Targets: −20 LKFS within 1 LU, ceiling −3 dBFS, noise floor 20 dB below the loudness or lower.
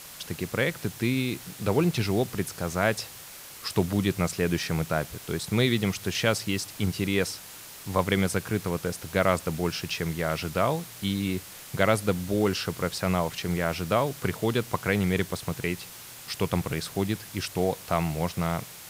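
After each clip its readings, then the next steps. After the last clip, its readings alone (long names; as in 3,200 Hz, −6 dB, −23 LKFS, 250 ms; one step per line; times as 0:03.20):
background noise floor −44 dBFS; target noise floor −48 dBFS; integrated loudness −28.0 LKFS; sample peak −5.5 dBFS; target loudness −20.0 LKFS
→ broadband denoise 6 dB, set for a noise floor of −44 dBFS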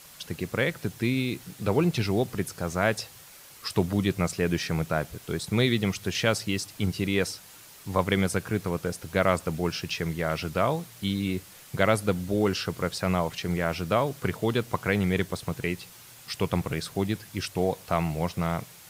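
background noise floor −49 dBFS; integrated loudness −28.0 LKFS; sample peak −6.0 dBFS; target loudness −20.0 LKFS
→ level +8 dB
brickwall limiter −3 dBFS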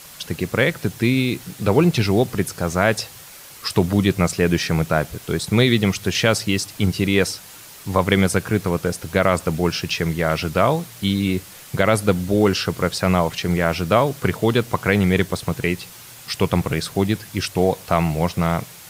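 integrated loudness −20.5 LKFS; sample peak −3.0 dBFS; background noise floor −41 dBFS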